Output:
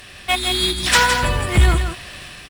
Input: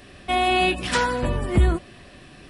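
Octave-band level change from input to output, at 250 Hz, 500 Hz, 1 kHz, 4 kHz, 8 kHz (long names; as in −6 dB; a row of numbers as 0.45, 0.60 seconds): −0.5, −0.5, +2.0, +10.0, +13.0 decibels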